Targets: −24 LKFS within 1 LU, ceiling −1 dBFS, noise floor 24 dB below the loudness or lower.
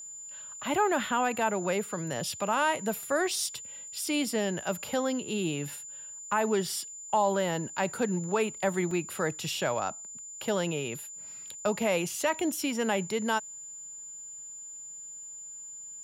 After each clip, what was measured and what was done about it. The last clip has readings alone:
number of dropouts 1; longest dropout 3.0 ms; interfering tone 7,100 Hz; level of the tone −41 dBFS; integrated loudness −31.0 LKFS; sample peak −15.0 dBFS; target loudness −24.0 LKFS
→ repair the gap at 0:08.91, 3 ms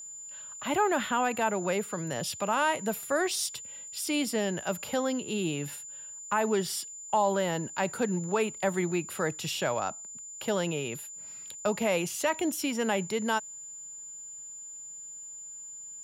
number of dropouts 0; interfering tone 7,100 Hz; level of the tone −41 dBFS
→ notch filter 7,100 Hz, Q 30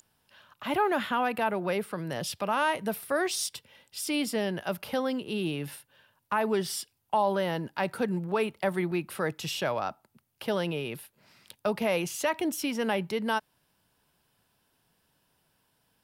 interfering tone none found; integrated loudness −30.5 LKFS; sample peak −15.5 dBFS; target loudness −24.0 LKFS
→ level +6.5 dB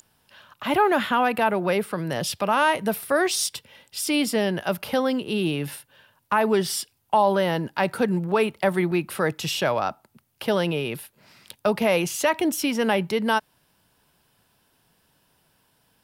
integrated loudness −24.0 LKFS; sample peak −9.0 dBFS; background noise floor −67 dBFS

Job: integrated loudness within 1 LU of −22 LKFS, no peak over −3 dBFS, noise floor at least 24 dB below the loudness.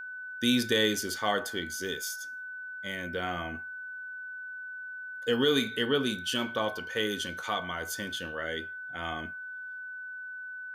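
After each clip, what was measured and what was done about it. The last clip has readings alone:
interfering tone 1,500 Hz; level of the tone −38 dBFS; integrated loudness −32.0 LKFS; sample peak −13.5 dBFS; target loudness −22.0 LKFS
→ notch filter 1,500 Hz, Q 30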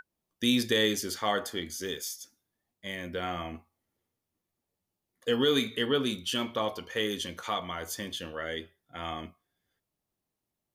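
interfering tone none found; integrated loudness −31.0 LKFS; sample peak −13.5 dBFS; target loudness −22.0 LKFS
→ level +9 dB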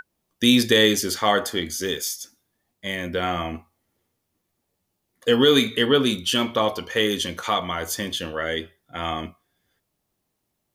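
integrated loudness −22.0 LKFS; sample peak −4.5 dBFS; background noise floor −77 dBFS

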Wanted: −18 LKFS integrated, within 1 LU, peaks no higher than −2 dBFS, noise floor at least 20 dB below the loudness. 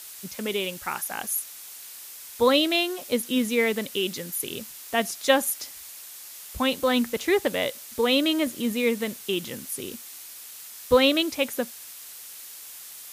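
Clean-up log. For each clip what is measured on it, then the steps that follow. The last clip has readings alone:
background noise floor −43 dBFS; target noise floor −45 dBFS; integrated loudness −25.0 LKFS; sample peak −7.0 dBFS; target loudness −18.0 LKFS
→ broadband denoise 6 dB, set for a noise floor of −43 dBFS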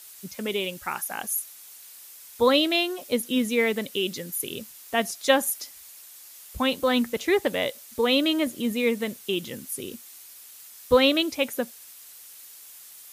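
background noise floor −47 dBFS; integrated loudness −25.0 LKFS; sample peak −7.0 dBFS; target loudness −18.0 LKFS
→ level +7 dB
brickwall limiter −2 dBFS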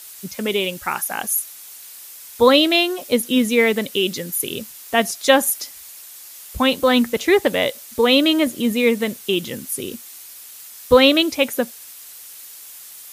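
integrated loudness −18.5 LKFS; sample peak −2.0 dBFS; background noise floor −40 dBFS

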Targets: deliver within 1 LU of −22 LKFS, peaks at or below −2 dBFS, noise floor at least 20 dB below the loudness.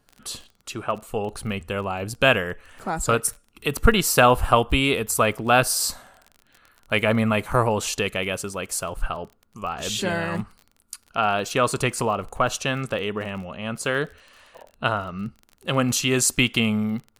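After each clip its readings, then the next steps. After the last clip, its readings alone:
crackle rate 25 per second; integrated loudness −23.0 LKFS; sample peak −2.0 dBFS; target loudness −22.0 LKFS
→ click removal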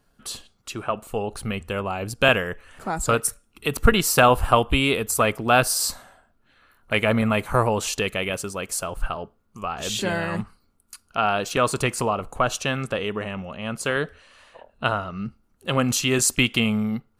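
crackle rate 0.12 per second; integrated loudness −23.0 LKFS; sample peak −2.0 dBFS; target loudness −22.0 LKFS
→ level +1 dB
brickwall limiter −2 dBFS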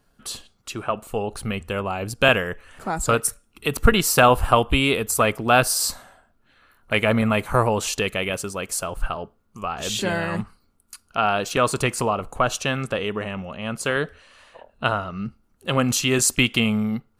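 integrated loudness −22.0 LKFS; sample peak −2.0 dBFS; background noise floor −64 dBFS

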